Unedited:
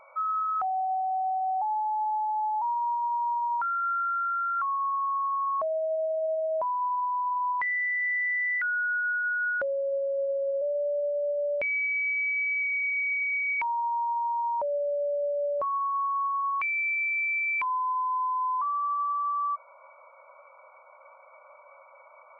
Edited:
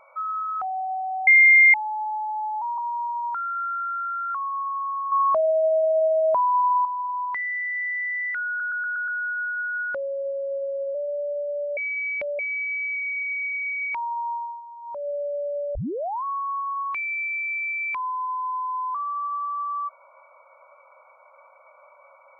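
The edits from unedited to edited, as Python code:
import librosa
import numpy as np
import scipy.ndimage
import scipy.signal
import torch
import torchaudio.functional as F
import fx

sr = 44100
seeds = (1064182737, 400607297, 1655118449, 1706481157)

y = fx.edit(x, sr, fx.bleep(start_s=1.27, length_s=0.47, hz=2110.0, db=-10.0),
    fx.cut(start_s=2.78, length_s=0.27),
    fx.clip_gain(start_s=5.39, length_s=1.73, db=8.0),
    fx.stutter(start_s=8.75, slice_s=0.12, count=6),
    fx.reverse_span(start_s=11.44, length_s=0.62),
    fx.fade_down_up(start_s=13.99, length_s=0.79, db=-13.0, fade_s=0.3),
    fx.tape_start(start_s=15.42, length_s=0.49), tone=tone)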